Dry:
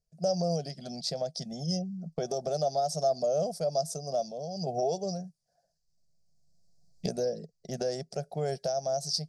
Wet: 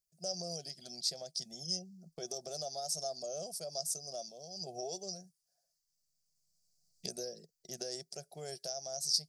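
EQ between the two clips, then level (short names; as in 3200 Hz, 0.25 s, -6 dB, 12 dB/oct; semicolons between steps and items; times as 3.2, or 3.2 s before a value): pre-emphasis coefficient 0.9; bell 360 Hz +9.5 dB 0.25 oct; +3.5 dB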